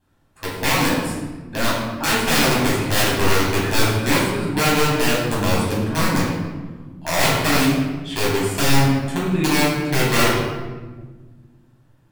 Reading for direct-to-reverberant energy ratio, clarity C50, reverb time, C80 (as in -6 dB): -7.5 dB, 0.5 dB, 1.4 s, 3.0 dB